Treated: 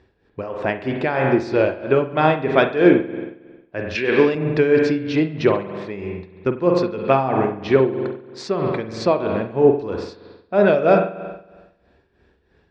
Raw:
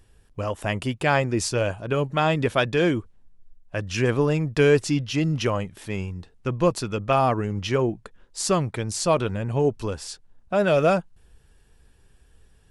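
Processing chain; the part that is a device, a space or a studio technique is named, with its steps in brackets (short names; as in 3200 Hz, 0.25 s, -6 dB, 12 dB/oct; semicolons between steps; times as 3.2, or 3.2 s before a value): combo amplifier with spring reverb and tremolo (spring tank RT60 1.2 s, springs 45 ms, chirp 25 ms, DRR 4 dB; tremolo 3.1 Hz, depth 70%; speaker cabinet 96–4000 Hz, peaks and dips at 110 Hz -8 dB, 160 Hz -5 dB, 380 Hz +5 dB, 1200 Hz -4 dB, 3000 Hz -10 dB); 3.95–4.35 weighting filter D; gain +6.5 dB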